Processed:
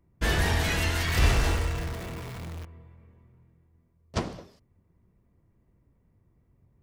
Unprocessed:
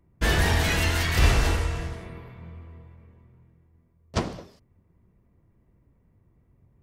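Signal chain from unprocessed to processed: 1.07–2.65 s: jump at every zero crossing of -32.5 dBFS; trim -3 dB

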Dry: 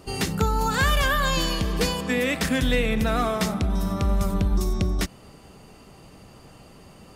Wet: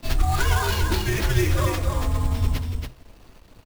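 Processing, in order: peaking EQ 130 Hz +12.5 dB 0.86 oct; hum notches 60/120/180/240/300/360/420 Hz; in parallel at -9.5 dB: saturation -20.5 dBFS, distortion -10 dB; on the sum: plain phase-vocoder stretch 0.51×; sample-rate reducer 8.7 kHz, jitter 20%; crossover distortion -46 dBFS; frequency shift -130 Hz; delay 281 ms -5 dB; on a send at -17.5 dB: reverberation, pre-delay 3 ms

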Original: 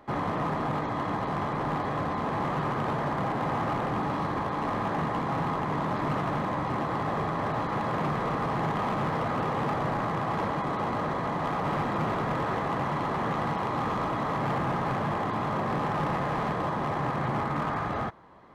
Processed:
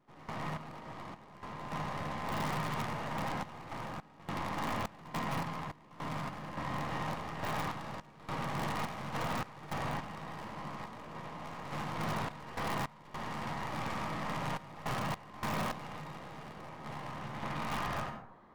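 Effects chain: tracing distortion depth 0.28 ms; feedback comb 930 Hz, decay 0.32 s, mix 70%; on a send at -5 dB: reverberation RT60 0.70 s, pre-delay 57 ms; on the sum: random-step tremolo, depth 95%; dynamic bell 380 Hz, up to -6 dB, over -56 dBFS, Q 1.8; pre-echo 90 ms -17 dB; in parallel at -4 dB: integer overflow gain 31.5 dB

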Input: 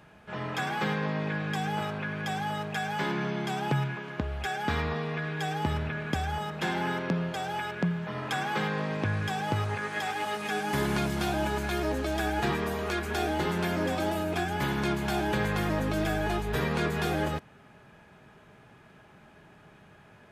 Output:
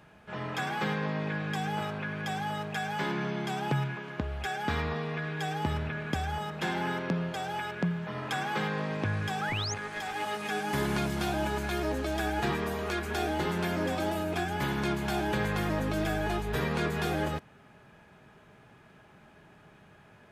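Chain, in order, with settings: 9.49–10.14 s: valve stage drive 26 dB, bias 0.5; 9.41–9.74 s: painted sound rise 1.2–6.9 kHz -34 dBFS; trim -1.5 dB

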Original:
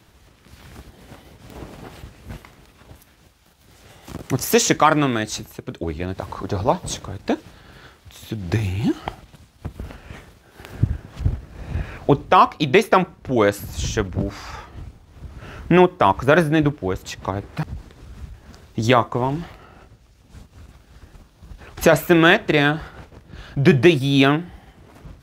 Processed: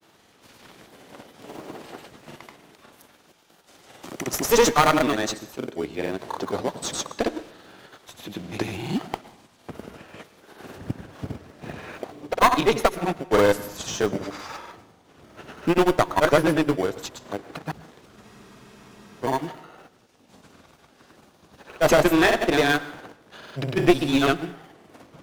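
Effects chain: high-pass 270 Hz 12 dB/octave; in parallel at -8.5 dB: sample-and-hold 17×; on the sum: granulator, grains 20 per s, pitch spread up and down by 0 st; one-sided clip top -18.5 dBFS; on a send at -17.5 dB: reverberation RT60 0.75 s, pre-delay 98 ms; on the sum: spectral freeze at 18.25 s, 0.99 s

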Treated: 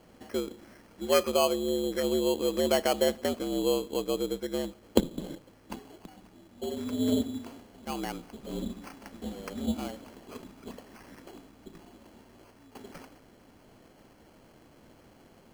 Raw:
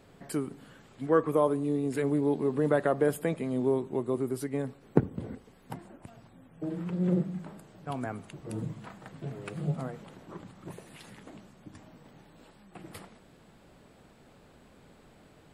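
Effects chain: frequency inversion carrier 3.6 kHz; sample-and-hold 12×

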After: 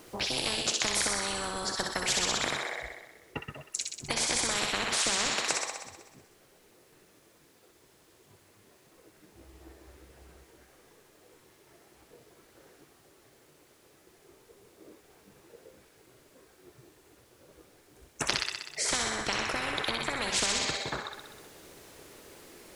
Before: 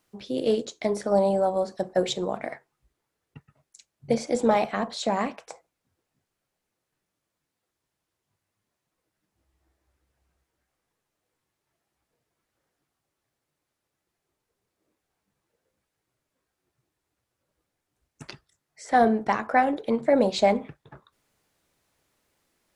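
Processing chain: compression, threshold -25 dBFS, peak gain reduction 10.5 dB; peaking EQ 400 Hz +9.5 dB 0.97 oct; feedback echo behind a high-pass 63 ms, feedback 67%, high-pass 1.5 kHz, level -4 dB; spectrum-flattening compressor 10:1

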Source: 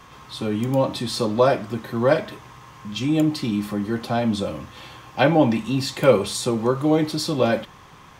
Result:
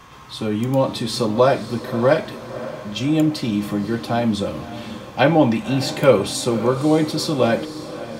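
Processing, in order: echo that smears into a reverb 551 ms, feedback 47%, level -13.5 dB; trim +2 dB

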